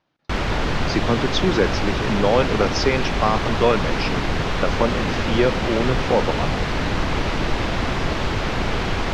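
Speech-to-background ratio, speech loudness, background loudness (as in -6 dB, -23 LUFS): 1.0 dB, -22.5 LUFS, -23.5 LUFS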